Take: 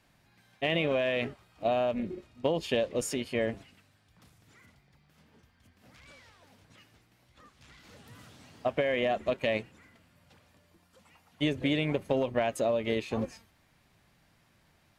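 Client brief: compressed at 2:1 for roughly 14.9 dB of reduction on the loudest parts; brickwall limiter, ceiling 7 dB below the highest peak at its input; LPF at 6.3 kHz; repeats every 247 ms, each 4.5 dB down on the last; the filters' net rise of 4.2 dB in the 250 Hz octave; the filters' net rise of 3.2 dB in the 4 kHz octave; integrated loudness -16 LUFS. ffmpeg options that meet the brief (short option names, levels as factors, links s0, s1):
-af "lowpass=6300,equalizer=f=250:t=o:g=5,equalizer=f=4000:t=o:g=5,acompressor=threshold=0.00316:ratio=2,alimiter=level_in=2.99:limit=0.0631:level=0:latency=1,volume=0.335,aecho=1:1:247|494|741|988|1235|1482|1729|1976|2223:0.596|0.357|0.214|0.129|0.0772|0.0463|0.0278|0.0167|0.01,volume=28.2"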